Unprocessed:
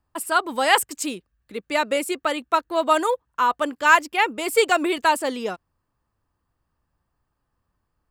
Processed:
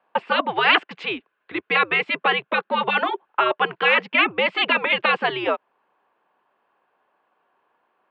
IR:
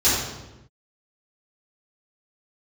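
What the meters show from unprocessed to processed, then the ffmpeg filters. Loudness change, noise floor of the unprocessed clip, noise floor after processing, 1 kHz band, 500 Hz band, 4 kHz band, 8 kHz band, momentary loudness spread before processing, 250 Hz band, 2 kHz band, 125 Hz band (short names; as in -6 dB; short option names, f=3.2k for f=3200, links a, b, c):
+1.0 dB, -77 dBFS, -75 dBFS, -1.5 dB, -2.0 dB, +4.5 dB, under -35 dB, 13 LU, -3.0 dB, +3.5 dB, n/a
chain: -filter_complex "[0:a]afftfilt=real='re*lt(hypot(re,im),0.447)':imag='im*lt(hypot(re,im),0.447)':win_size=1024:overlap=0.75,asplit=2[a][b];[b]acompressor=threshold=-35dB:ratio=6,volume=1dB[c];[a][c]amix=inputs=2:normalize=0,highpass=f=470:t=q:w=0.5412,highpass=f=470:t=q:w=1.307,lowpass=f=3.3k:t=q:w=0.5176,lowpass=f=3.3k:t=q:w=0.7071,lowpass=f=3.3k:t=q:w=1.932,afreqshift=-110,volume=7.5dB"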